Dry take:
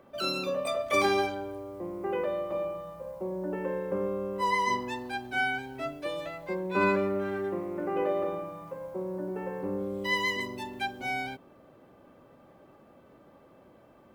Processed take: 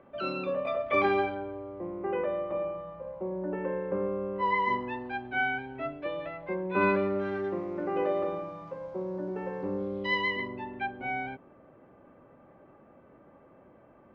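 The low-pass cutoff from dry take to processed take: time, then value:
low-pass 24 dB/octave
6.65 s 2.8 kHz
7.31 s 5.6 kHz
9.72 s 5.6 kHz
10.59 s 2.4 kHz

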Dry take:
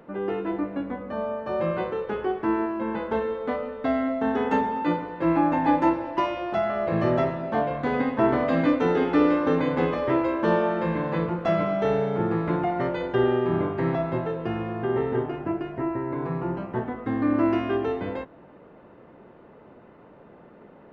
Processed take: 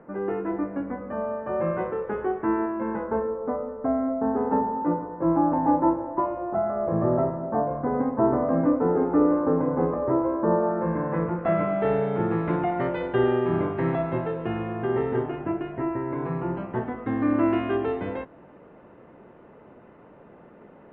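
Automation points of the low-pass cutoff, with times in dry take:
low-pass 24 dB/octave
2.84 s 2 kHz
3.37 s 1.2 kHz
10.59 s 1.2 kHz
11.24 s 1.9 kHz
12.17 s 3.2 kHz

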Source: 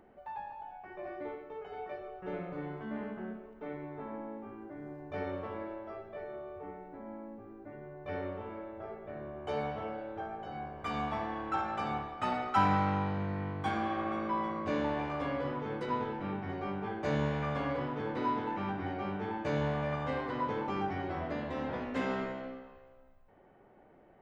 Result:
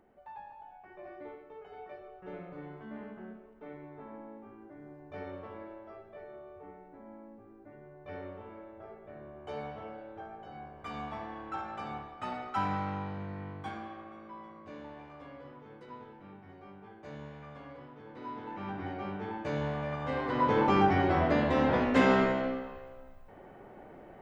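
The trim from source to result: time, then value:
13.56 s -5 dB
14.11 s -14 dB
18.04 s -14 dB
18.78 s -1.5 dB
19.98 s -1.5 dB
20.63 s +10 dB

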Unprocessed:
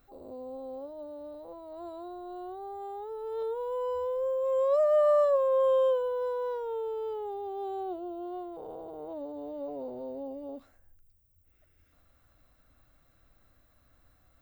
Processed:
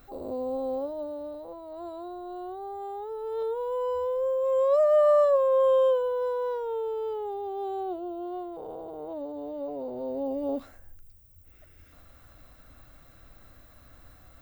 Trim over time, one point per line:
0.73 s +10 dB
1.57 s +3 dB
9.85 s +3 dB
10.52 s +11.5 dB

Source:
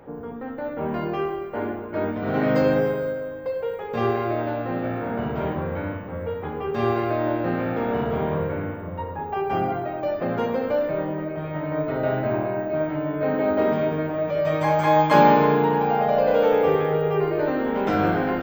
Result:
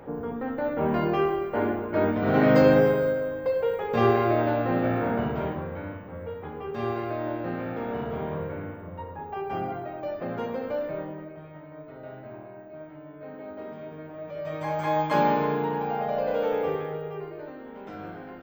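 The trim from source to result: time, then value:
5.06 s +2 dB
5.71 s -7 dB
10.95 s -7 dB
11.73 s -18 dB
13.73 s -18 dB
14.86 s -7.5 dB
16.63 s -7.5 dB
17.57 s -18 dB

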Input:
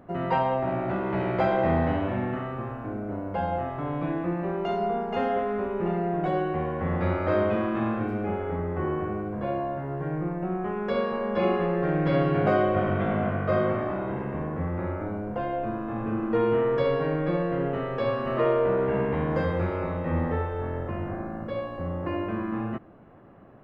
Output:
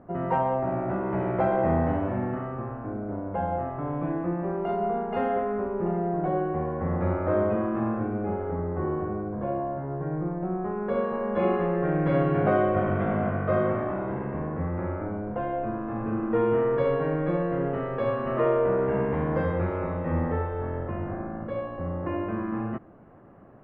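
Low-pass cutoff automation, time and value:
4.56 s 1.5 kHz
5.26 s 2.2 kHz
5.71 s 1.3 kHz
10.76 s 1.3 kHz
11.53 s 2.1 kHz

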